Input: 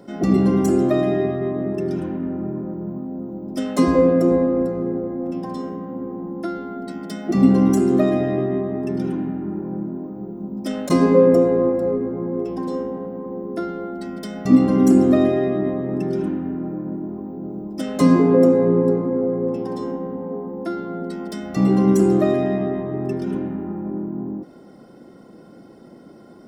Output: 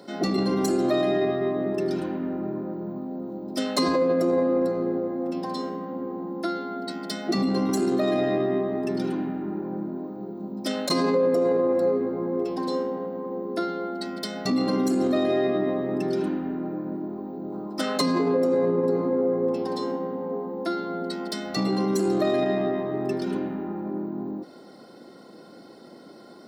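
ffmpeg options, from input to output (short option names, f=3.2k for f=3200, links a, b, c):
-filter_complex "[0:a]asettb=1/sr,asplit=3[a][b][c];[a]atrim=end=17.524[d];[b]atrim=start=17.52:end=17.98,asetpts=PTS-STARTPTS,afade=t=in:d=0.004:c=qsin,afade=t=out:st=0.456:d=0.004:c=qsin,equalizer=f=1.2k:t=o:w=1:g=9.5[e];[c]atrim=start=17.976[f];[d][e]acrossfade=d=0.004:c1=hsin:c2=qsin[g];[g][f]acrossfade=d=0.004:c1=qsin:c2=hsin,alimiter=limit=-13.5dB:level=0:latency=1:release=23,highpass=f=430:p=1,equalizer=f=4.2k:w=4.7:g=14,volume=2dB"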